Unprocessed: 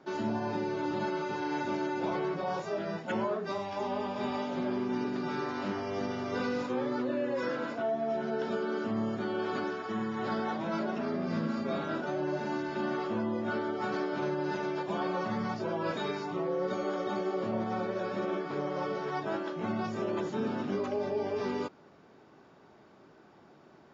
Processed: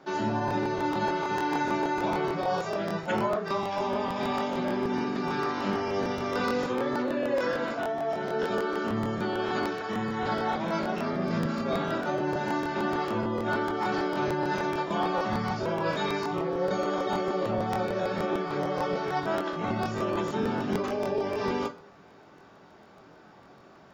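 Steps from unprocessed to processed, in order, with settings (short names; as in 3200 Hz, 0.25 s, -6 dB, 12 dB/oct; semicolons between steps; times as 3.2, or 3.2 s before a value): bell 310 Hz -3.5 dB 1.4 oct; de-hum 45.19 Hz, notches 9; on a send at -6.5 dB: reverb RT60 0.30 s, pre-delay 4 ms; on the sum: crackling interface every 0.15 s, samples 1024, repeat, from 0.46; gain +5.5 dB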